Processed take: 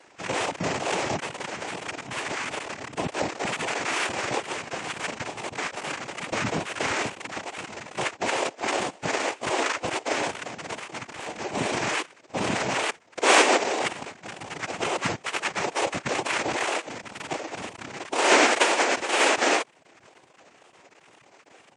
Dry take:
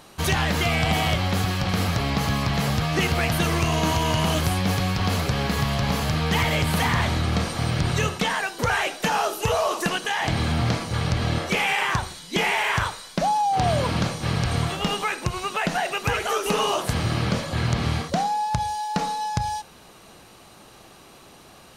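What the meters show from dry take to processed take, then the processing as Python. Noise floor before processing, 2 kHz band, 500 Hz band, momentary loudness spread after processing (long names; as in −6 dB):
−49 dBFS, −0.5 dB, 0.0 dB, 15 LU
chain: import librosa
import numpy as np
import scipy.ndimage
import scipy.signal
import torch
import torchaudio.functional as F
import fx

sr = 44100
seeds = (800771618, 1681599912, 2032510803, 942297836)

p1 = fx.sine_speech(x, sr)
p2 = fx.dereverb_blind(p1, sr, rt60_s=0.89)
p3 = fx.peak_eq(p2, sr, hz=1300.0, db=5.5, octaves=2.2)
p4 = fx.over_compress(p3, sr, threshold_db=-28.0, ratio=-1.0)
p5 = p3 + F.gain(torch.from_numpy(p4), 2.5).numpy()
p6 = scipy.signal.sosfilt(scipy.signal.butter(4, 320.0, 'highpass', fs=sr, output='sos'), p5)
p7 = fx.sample_hold(p6, sr, seeds[0], rate_hz=2300.0, jitter_pct=0)
p8 = fx.noise_vocoder(p7, sr, seeds[1], bands=4)
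p9 = fx.wow_flutter(p8, sr, seeds[2], rate_hz=2.1, depth_cents=120.0)
p10 = fx.spec_gate(p9, sr, threshold_db=-30, keep='strong')
y = F.gain(torch.from_numpy(p10), -8.5).numpy()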